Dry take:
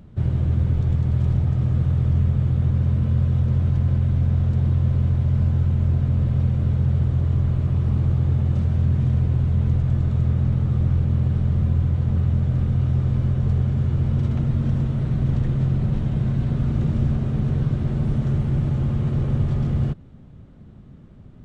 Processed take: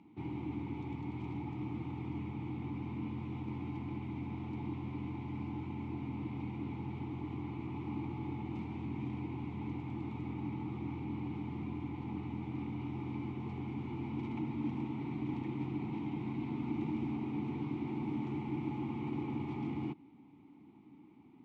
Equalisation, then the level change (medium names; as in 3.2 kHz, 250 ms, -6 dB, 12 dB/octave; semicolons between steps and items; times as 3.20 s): vowel filter u; high-pass 70 Hz; bass shelf 460 Hz -11.5 dB; +11.0 dB